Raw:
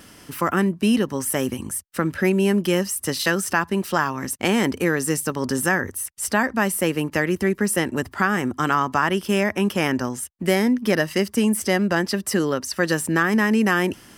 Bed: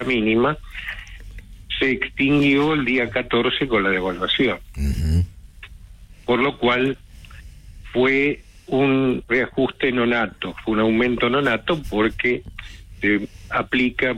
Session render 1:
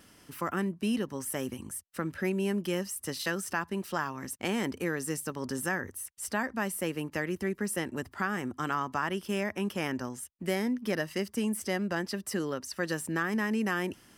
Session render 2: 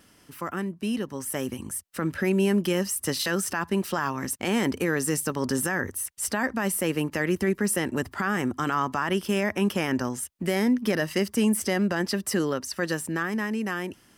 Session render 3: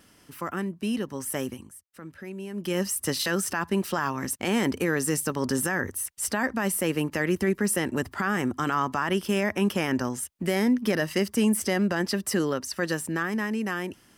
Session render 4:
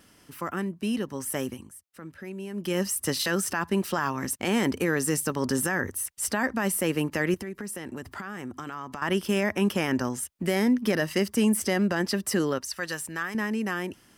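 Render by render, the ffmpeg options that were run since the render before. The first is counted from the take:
ffmpeg -i in.wav -af "volume=-11dB" out.wav
ffmpeg -i in.wav -af "dynaudnorm=framelen=150:gausssize=21:maxgain=8.5dB,alimiter=limit=-15dB:level=0:latency=1:release=13" out.wav
ffmpeg -i in.wav -filter_complex "[0:a]asplit=3[link_01][link_02][link_03];[link_01]atrim=end=1.7,asetpts=PTS-STARTPTS,afade=type=out:start_time=1.41:duration=0.29:silence=0.188365[link_04];[link_02]atrim=start=1.7:end=2.53,asetpts=PTS-STARTPTS,volume=-14.5dB[link_05];[link_03]atrim=start=2.53,asetpts=PTS-STARTPTS,afade=type=in:duration=0.29:silence=0.188365[link_06];[link_04][link_05][link_06]concat=n=3:v=0:a=1" out.wav
ffmpeg -i in.wav -filter_complex "[0:a]asettb=1/sr,asplit=3[link_01][link_02][link_03];[link_01]atrim=end=7.344[link_04];[link_02]atrim=start=7.34:end=9.02,asetpts=PTS-STARTPTS,afade=type=in:duration=0.004:curve=qsin,afade=type=out:start_time=1.676:duration=0.004:curve=qsin,acompressor=threshold=-34dB:ratio=4:attack=3.2:release=140:knee=1:detection=peak[link_05];[link_03]atrim=start=9.016[link_06];[link_04][link_05]acrossfade=duration=0.004:curve1=hsin:curve2=qsin[link_07];[link_07][link_06]acrossfade=duration=0.004:curve1=qsin:curve2=hsin,asettb=1/sr,asplit=3[link_08][link_09][link_10];[link_08]atrim=end=12.584[link_11];[link_09]atrim=start=12.58:end=13.35,asetpts=PTS-STARTPTS,afade=type=in:duration=0.004:curve=qsin,afade=type=out:start_time=0.766:duration=0.004:curve=qsin,equalizer=frequency=260:width_type=o:width=2.7:gain=-10.5[link_12];[link_10]atrim=start=13.346[link_13];[link_11][link_12]acrossfade=duration=0.004:curve1=hsin:curve2=qsin[link_14];[link_14][link_13]acrossfade=duration=0.004:curve1=qsin:curve2=hsin" out.wav

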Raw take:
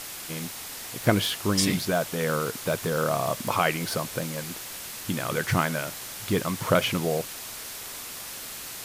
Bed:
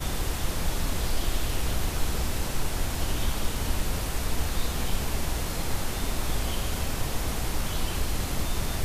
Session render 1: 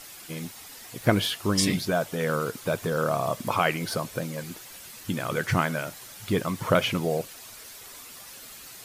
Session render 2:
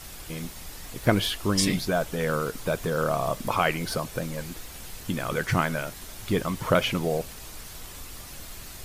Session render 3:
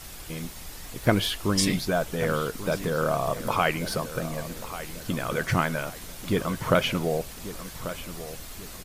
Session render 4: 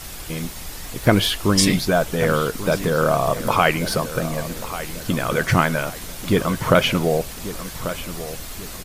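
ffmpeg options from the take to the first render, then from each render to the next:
ffmpeg -i in.wav -af "afftdn=noise_reduction=9:noise_floor=-39" out.wav
ffmpeg -i in.wav -i bed.wav -filter_complex "[1:a]volume=-16dB[link_01];[0:a][link_01]amix=inputs=2:normalize=0" out.wav
ffmpeg -i in.wav -filter_complex "[0:a]asplit=2[link_01][link_02];[link_02]adelay=1139,lowpass=frequency=3300:poles=1,volume=-13dB,asplit=2[link_03][link_04];[link_04]adelay=1139,lowpass=frequency=3300:poles=1,volume=0.4,asplit=2[link_05][link_06];[link_06]adelay=1139,lowpass=frequency=3300:poles=1,volume=0.4,asplit=2[link_07][link_08];[link_08]adelay=1139,lowpass=frequency=3300:poles=1,volume=0.4[link_09];[link_01][link_03][link_05][link_07][link_09]amix=inputs=5:normalize=0" out.wav
ffmpeg -i in.wav -af "volume=7dB,alimiter=limit=-2dB:level=0:latency=1" out.wav

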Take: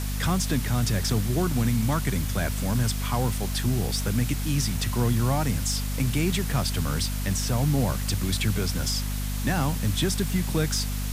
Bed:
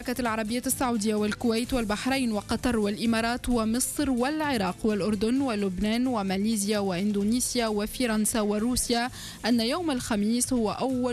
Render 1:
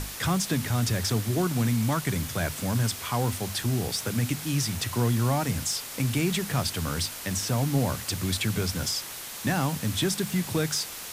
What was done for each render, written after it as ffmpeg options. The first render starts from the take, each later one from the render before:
ffmpeg -i in.wav -af "bandreject=frequency=50:width_type=h:width=6,bandreject=frequency=100:width_type=h:width=6,bandreject=frequency=150:width_type=h:width=6,bandreject=frequency=200:width_type=h:width=6,bandreject=frequency=250:width_type=h:width=6" out.wav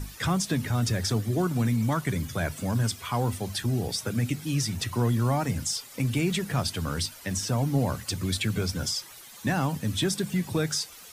ffmpeg -i in.wav -af "afftdn=noise_reduction=13:noise_floor=-39" out.wav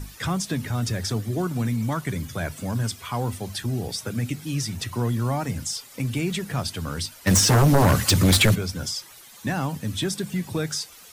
ffmpeg -i in.wav -filter_complex "[0:a]asplit=3[link_01][link_02][link_03];[link_01]afade=type=out:start_time=7.26:duration=0.02[link_04];[link_02]aeval=exprs='0.237*sin(PI/2*3.55*val(0)/0.237)':channel_layout=same,afade=type=in:start_time=7.26:duration=0.02,afade=type=out:start_time=8.54:duration=0.02[link_05];[link_03]afade=type=in:start_time=8.54:duration=0.02[link_06];[link_04][link_05][link_06]amix=inputs=3:normalize=0" out.wav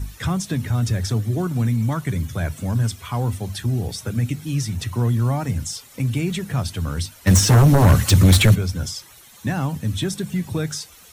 ffmpeg -i in.wav -af "equalizer=frequency=64:width=0.54:gain=9.5,bandreject=frequency=4800:width=14" out.wav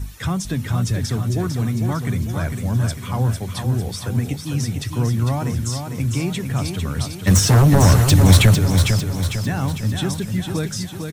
ffmpeg -i in.wav -af "aecho=1:1:451|902|1353|1804|2255|2706:0.501|0.246|0.12|0.059|0.0289|0.0142" out.wav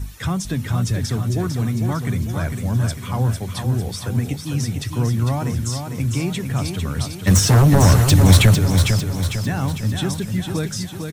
ffmpeg -i in.wav -af anull out.wav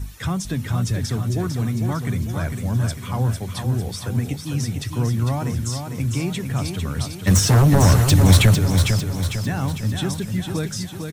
ffmpeg -i in.wav -af "volume=-1.5dB" out.wav

